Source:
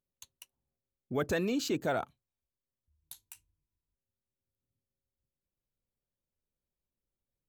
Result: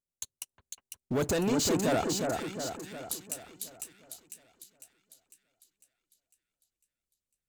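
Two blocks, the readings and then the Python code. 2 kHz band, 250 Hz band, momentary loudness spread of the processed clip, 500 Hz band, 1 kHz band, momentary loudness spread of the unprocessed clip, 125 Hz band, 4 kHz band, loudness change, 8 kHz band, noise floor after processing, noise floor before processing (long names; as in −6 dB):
+1.5 dB, +5.0 dB, 20 LU, +4.5 dB, +4.5 dB, 20 LU, +6.0 dB, +7.0 dB, +1.0 dB, +13.5 dB, below −85 dBFS, below −85 dBFS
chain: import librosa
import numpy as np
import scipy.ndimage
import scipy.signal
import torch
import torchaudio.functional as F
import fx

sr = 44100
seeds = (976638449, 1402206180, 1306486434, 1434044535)

p1 = fx.graphic_eq(x, sr, hz=(1000, 2000, 8000), db=(-4, -5, 9))
p2 = fx.leveller(p1, sr, passes=3)
p3 = fx.rider(p2, sr, range_db=10, speed_s=0.5)
y = p3 + fx.echo_split(p3, sr, split_hz=1800.0, low_ms=359, high_ms=501, feedback_pct=52, wet_db=-4, dry=0)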